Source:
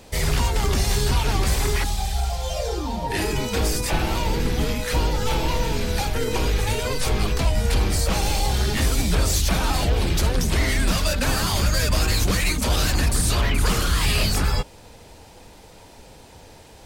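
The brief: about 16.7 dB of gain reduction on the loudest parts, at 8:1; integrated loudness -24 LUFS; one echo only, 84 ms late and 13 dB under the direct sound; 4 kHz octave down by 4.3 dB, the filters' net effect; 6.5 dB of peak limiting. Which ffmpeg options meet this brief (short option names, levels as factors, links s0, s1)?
-af "equalizer=f=4000:t=o:g=-5.5,acompressor=threshold=0.02:ratio=8,alimiter=level_in=2.11:limit=0.0631:level=0:latency=1,volume=0.473,aecho=1:1:84:0.224,volume=7.08"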